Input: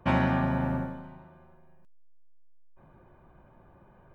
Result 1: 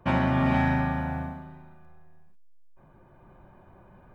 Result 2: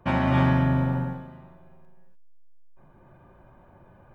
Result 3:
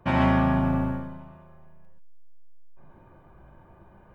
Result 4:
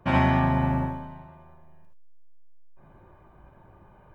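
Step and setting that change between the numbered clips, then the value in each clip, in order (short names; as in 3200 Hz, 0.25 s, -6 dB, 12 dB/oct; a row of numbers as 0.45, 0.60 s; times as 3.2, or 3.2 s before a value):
non-linear reverb, gate: 0.52, 0.32, 0.16, 0.1 s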